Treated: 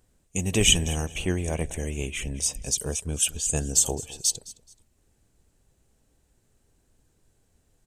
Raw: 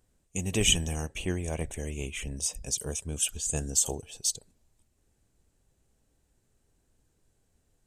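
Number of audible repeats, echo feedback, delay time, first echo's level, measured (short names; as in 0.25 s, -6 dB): 2, 27%, 0.214 s, -19.0 dB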